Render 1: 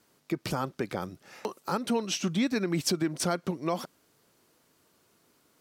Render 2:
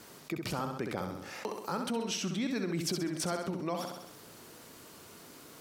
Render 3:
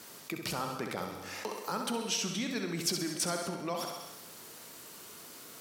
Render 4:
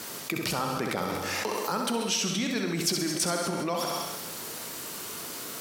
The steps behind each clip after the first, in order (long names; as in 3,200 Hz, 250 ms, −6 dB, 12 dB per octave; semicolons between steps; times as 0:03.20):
on a send: flutter between parallel walls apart 11.2 metres, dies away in 0.51 s; on the sum: envelope flattener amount 50%; level −7.5 dB
spectral tilt +1.5 dB per octave; reverb whose tail is shaped and stops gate 270 ms flat, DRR 7.5 dB
delay that plays each chunk backwards 130 ms, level −13 dB; in parallel at −2 dB: compressor whose output falls as the input rises −42 dBFS, ratio −1; on the sum: level +3.5 dB